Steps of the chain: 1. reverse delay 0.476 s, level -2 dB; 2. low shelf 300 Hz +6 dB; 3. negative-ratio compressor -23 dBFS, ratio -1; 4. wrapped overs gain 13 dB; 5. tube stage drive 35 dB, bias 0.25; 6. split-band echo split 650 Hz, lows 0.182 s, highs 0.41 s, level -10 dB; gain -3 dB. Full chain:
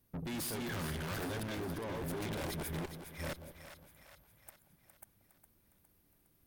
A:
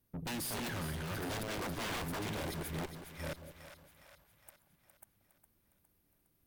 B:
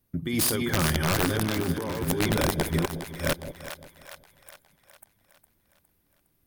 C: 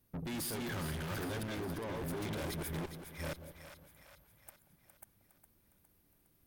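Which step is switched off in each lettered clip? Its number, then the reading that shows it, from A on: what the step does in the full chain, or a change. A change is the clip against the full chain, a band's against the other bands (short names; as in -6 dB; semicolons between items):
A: 3, momentary loudness spread change -8 LU; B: 5, crest factor change +5.5 dB; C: 4, distortion -3 dB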